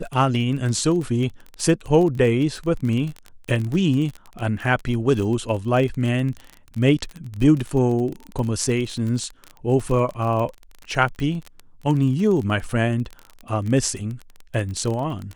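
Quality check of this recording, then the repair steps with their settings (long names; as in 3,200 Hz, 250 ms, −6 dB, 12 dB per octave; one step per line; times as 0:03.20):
surface crackle 24 per second −26 dBFS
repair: click removal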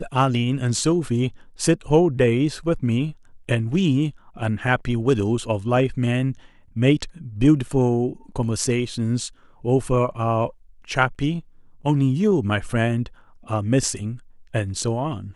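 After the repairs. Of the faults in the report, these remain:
none of them is left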